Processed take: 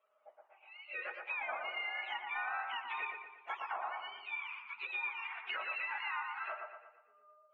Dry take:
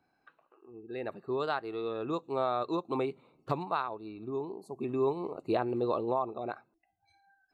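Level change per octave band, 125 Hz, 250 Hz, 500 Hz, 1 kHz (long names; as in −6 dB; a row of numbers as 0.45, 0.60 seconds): below −40 dB, below −35 dB, −20.5 dB, −5.5 dB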